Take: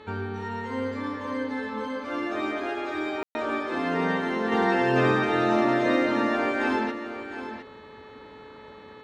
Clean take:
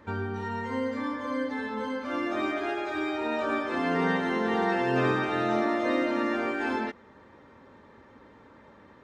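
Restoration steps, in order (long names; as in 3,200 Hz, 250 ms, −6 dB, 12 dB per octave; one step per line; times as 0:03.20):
hum removal 431.7 Hz, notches 10
ambience match 0:03.23–0:03.35
echo removal 709 ms −10.5 dB
level 0 dB, from 0:04.52 −3.5 dB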